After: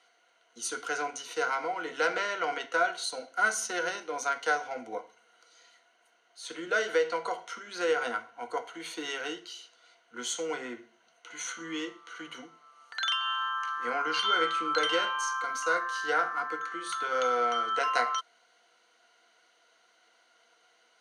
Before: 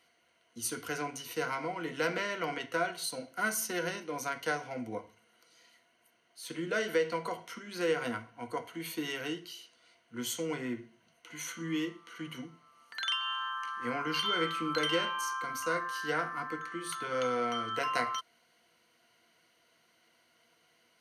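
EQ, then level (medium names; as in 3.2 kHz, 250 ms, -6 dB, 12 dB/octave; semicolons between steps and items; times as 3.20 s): cabinet simulation 360–9100 Hz, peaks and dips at 460 Hz +4 dB, 780 Hz +8 dB, 1.4 kHz +8 dB, 3.7 kHz +6 dB, 6.6 kHz +6 dB; 0.0 dB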